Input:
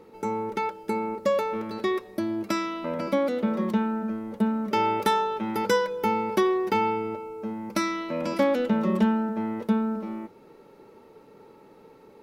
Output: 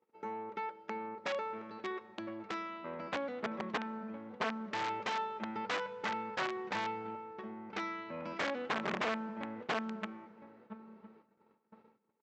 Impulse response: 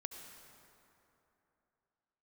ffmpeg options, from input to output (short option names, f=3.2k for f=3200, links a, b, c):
-filter_complex "[0:a]aeval=exprs='0.237*(cos(1*acos(clip(val(0)/0.237,-1,1)))-cos(1*PI/2))+0.0841*(cos(3*acos(clip(val(0)/0.237,-1,1)))-cos(3*PI/2))+0.00188*(cos(4*acos(clip(val(0)/0.237,-1,1)))-cos(4*PI/2))+0.0211*(cos(5*acos(clip(val(0)/0.237,-1,1)))-cos(5*PI/2))+0.00266*(cos(8*acos(clip(val(0)/0.237,-1,1)))-cos(8*PI/2))':c=same,asplit=2[a][b];[b]adelay=1011,lowpass=f=1.8k:p=1,volume=-16dB,asplit=2[c][d];[d]adelay=1011,lowpass=f=1.8k:p=1,volume=0.25[e];[a][c][e]amix=inputs=3:normalize=0,asubboost=boost=2.5:cutoff=200,aresample=16000,aeval=exprs='(mod(15*val(0)+1,2)-1)/15':c=same,aresample=44100,acontrast=63,asoftclip=type=tanh:threshold=-16.5dB,highpass=140,lowpass=2.5k,agate=range=-22dB:threshold=-50dB:ratio=16:detection=peak,lowshelf=f=480:g=-10,asplit=2[f][g];[1:a]atrim=start_sample=2205[h];[g][h]afir=irnorm=-1:irlink=0,volume=-14dB[i];[f][i]amix=inputs=2:normalize=0,volume=-6dB"